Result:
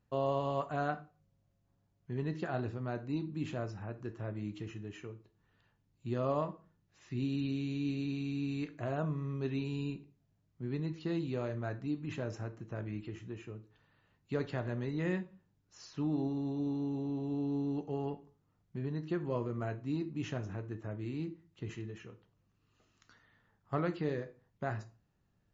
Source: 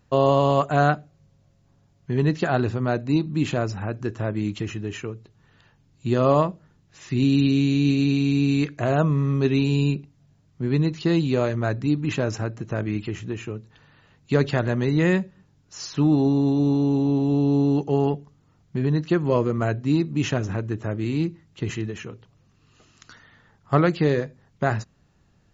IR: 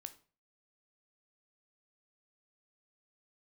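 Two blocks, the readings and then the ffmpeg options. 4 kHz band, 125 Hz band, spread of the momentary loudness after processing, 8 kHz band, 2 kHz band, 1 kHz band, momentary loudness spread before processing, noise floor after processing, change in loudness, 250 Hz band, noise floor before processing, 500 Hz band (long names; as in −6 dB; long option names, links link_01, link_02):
−16.5 dB, −15.0 dB, 11 LU, can't be measured, −15.0 dB, −14.5 dB, 12 LU, −76 dBFS, −14.5 dB, −14.5 dB, −61 dBFS, −14.5 dB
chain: -filter_complex "[0:a]highshelf=frequency=4200:gain=-6[link_01];[1:a]atrim=start_sample=2205,asetrate=48510,aresample=44100[link_02];[link_01][link_02]afir=irnorm=-1:irlink=0,volume=-8dB"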